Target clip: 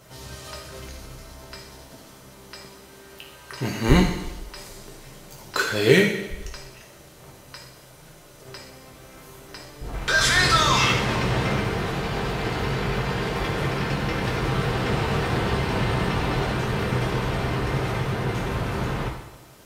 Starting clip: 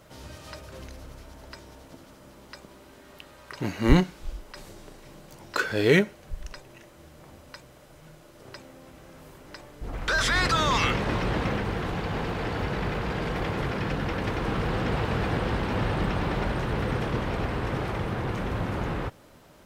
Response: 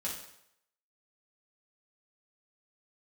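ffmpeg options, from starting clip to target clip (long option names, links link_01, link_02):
-filter_complex "[0:a]asplit=2[link_01][link_02];[1:a]atrim=start_sample=2205,asetrate=31311,aresample=44100,highshelf=frequency=3100:gain=10.5[link_03];[link_02][link_03]afir=irnorm=-1:irlink=0,volume=-3dB[link_04];[link_01][link_04]amix=inputs=2:normalize=0,volume=-2.5dB"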